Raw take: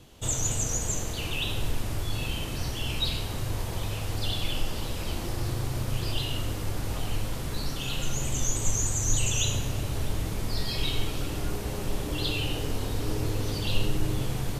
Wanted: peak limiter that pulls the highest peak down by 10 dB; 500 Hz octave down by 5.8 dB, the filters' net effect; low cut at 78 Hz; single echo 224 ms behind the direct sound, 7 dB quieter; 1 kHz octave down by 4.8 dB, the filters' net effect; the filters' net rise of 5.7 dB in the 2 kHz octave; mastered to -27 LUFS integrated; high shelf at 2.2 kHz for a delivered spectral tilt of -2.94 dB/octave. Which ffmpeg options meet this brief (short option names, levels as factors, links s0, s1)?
-af "highpass=78,equalizer=f=500:t=o:g=-6.5,equalizer=f=1000:t=o:g=-7,equalizer=f=2000:t=o:g=6.5,highshelf=f=2200:g=4.5,alimiter=limit=0.106:level=0:latency=1,aecho=1:1:224:0.447,volume=1.26"